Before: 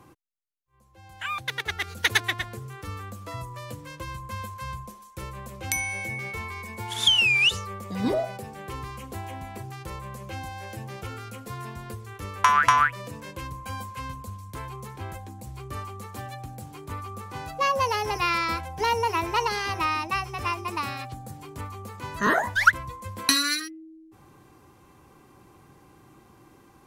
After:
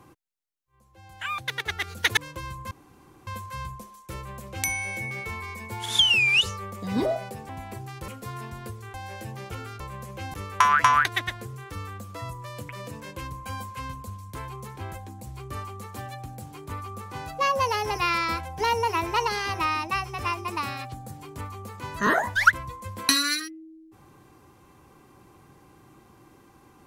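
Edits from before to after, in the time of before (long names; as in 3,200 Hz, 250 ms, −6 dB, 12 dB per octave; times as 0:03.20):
0:02.17–0:03.81: move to 0:12.89
0:04.35: splice in room tone 0.56 s
0:08.57–0:09.33: remove
0:09.92–0:10.46: swap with 0:11.32–0:12.18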